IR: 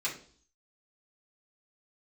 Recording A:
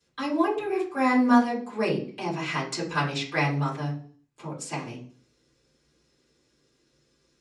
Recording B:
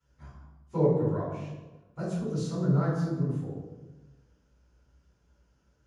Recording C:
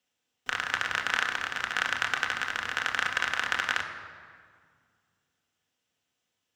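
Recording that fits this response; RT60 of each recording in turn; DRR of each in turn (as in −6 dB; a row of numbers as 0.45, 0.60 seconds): A; 0.50, 1.2, 2.0 seconds; −7.0, −11.5, 2.0 decibels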